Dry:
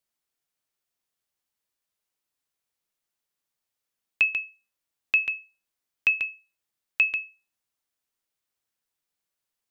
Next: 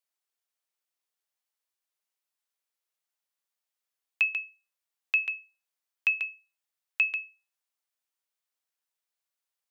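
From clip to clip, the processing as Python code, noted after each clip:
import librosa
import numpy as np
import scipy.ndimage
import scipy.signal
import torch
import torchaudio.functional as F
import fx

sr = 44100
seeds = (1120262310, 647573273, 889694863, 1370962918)

y = scipy.signal.sosfilt(scipy.signal.butter(2, 490.0, 'highpass', fs=sr, output='sos'), x)
y = y * 10.0 ** (-3.5 / 20.0)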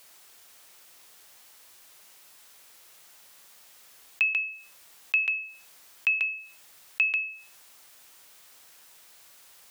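y = fx.env_flatten(x, sr, amount_pct=50)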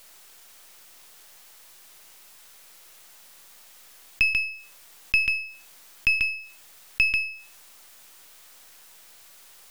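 y = np.where(x < 0.0, 10.0 ** (-7.0 / 20.0) * x, x)
y = y * 10.0 ** (5.5 / 20.0)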